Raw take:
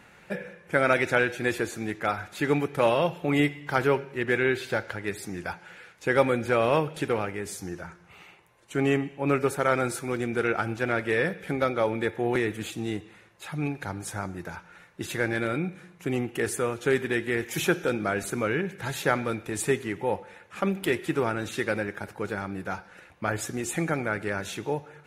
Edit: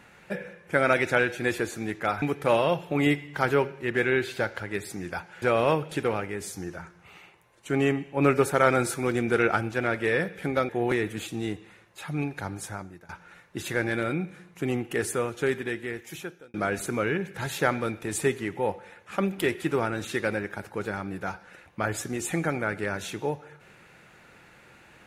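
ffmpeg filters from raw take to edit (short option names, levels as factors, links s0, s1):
-filter_complex "[0:a]asplit=8[s0][s1][s2][s3][s4][s5][s6][s7];[s0]atrim=end=2.222[s8];[s1]atrim=start=2.548:end=5.752[s9];[s2]atrim=start=6.468:end=9.222[s10];[s3]atrim=start=9.218:end=10.662,asetpts=PTS-STARTPTS,volume=1.41[s11];[s4]atrim=start=10.658:end=11.742[s12];[s5]atrim=start=12.128:end=14.53,asetpts=PTS-STARTPTS,afade=t=out:st=1.862:d=0.54:silence=0.1[s13];[s6]atrim=start=14.53:end=17.98,asetpts=PTS-STARTPTS,afade=t=in:d=0.004:c=hsin:silence=0.1,afade=t=out:st=2.08:d=1.37[s14];[s7]atrim=start=17.98,asetpts=PTS-STARTPTS,afade=t=in:d=0.004:c=hsin[s15];[s8][s9]acrossfade=d=0.004:c1=hsin:c2=hsin[s16];[s16][s10]acrossfade=d=0.004:c1=hsin:c2=hsin[s17];[s17][s11]acrossfade=d=0.004:c1=hsin:c2=hsin[s18];[s18][s12]acrossfade=d=0.004:c1=hsin:c2=hsin[s19];[s13][s14][s15]concat=n=3:v=0:a=1[s20];[s19][s20]acrossfade=d=0.004:c1=hsin:c2=hsin"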